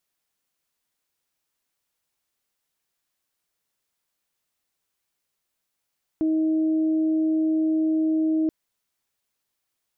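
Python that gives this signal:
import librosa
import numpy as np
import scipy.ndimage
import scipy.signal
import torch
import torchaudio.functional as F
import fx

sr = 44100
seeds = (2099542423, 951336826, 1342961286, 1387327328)

y = fx.additive_steady(sr, length_s=2.28, hz=316.0, level_db=-19, upper_db=(-18.0,))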